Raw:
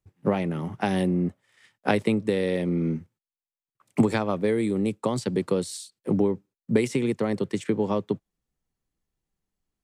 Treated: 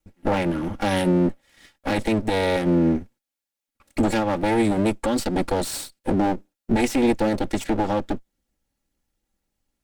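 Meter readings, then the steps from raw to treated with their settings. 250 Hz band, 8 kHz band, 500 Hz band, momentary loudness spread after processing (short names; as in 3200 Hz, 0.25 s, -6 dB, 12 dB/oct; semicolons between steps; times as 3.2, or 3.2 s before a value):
+3.5 dB, +6.0 dB, +2.0 dB, 8 LU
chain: minimum comb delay 3.6 ms; notch 1100 Hz, Q 10; limiter -20 dBFS, peak gain reduction 11 dB; gain +8 dB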